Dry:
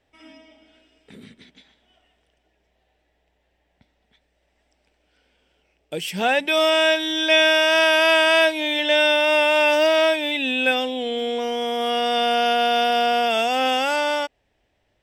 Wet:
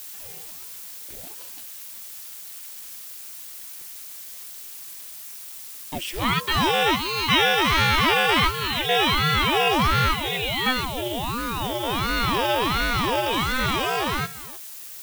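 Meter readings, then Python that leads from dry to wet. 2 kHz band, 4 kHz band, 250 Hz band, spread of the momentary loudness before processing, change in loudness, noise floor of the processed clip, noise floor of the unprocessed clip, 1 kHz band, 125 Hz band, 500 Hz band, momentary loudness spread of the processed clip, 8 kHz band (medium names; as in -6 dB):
-3.5 dB, -2.0 dB, -0.5 dB, 10 LU, -3.0 dB, -39 dBFS, -69 dBFS, -0.5 dB, no reading, -8.5 dB, 17 LU, +3.0 dB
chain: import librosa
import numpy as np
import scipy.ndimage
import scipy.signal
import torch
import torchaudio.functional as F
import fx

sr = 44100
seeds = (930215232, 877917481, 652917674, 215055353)

y = x + 10.0 ** (-17.5 / 20.0) * np.pad(x, (int(306 * sr / 1000.0), 0))[:len(x)]
y = fx.dmg_noise_colour(y, sr, seeds[0], colour='blue', level_db=-36.0)
y = fx.ring_lfo(y, sr, carrier_hz=440.0, swing_pct=75, hz=1.4)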